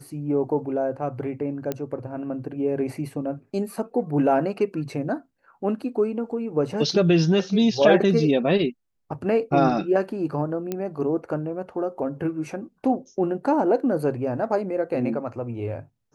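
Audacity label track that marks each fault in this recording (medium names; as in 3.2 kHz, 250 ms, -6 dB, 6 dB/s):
1.720000	1.720000	pop -13 dBFS
10.720000	10.720000	pop -14 dBFS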